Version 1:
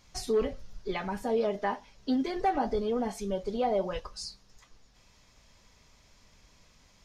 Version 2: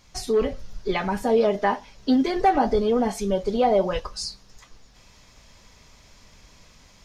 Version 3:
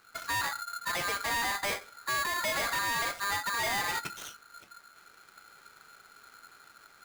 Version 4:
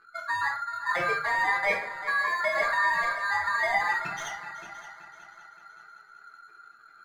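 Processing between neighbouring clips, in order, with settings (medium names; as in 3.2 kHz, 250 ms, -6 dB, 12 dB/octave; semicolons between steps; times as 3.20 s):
level rider gain up to 4 dB; trim +4.5 dB
median filter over 15 samples; valve stage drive 29 dB, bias 0.5; polarity switched at an audio rate 1.4 kHz
spectral contrast enhancement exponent 2.2; multi-head delay 190 ms, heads second and third, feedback 43%, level -15 dB; reverberation RT60 0.45 s, pre-delay 6 ms, DRR 0.5 dB; trim +2.5 dB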